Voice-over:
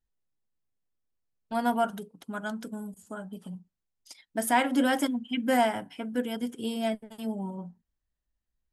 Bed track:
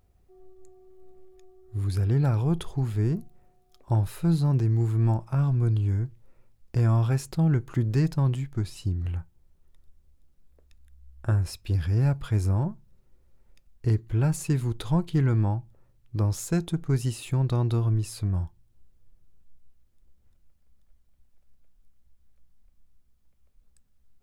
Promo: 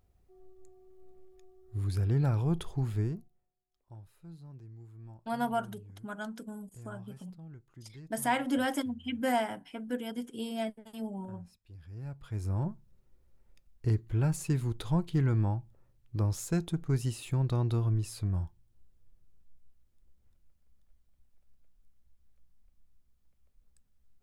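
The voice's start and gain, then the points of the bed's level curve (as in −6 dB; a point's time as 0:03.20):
3.75 s, −5.0 dB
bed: 0:02.99 −4.5 dB
0:03.53 −26 dB
0:11.71 −26 dB
0:12.67 −4.5 dB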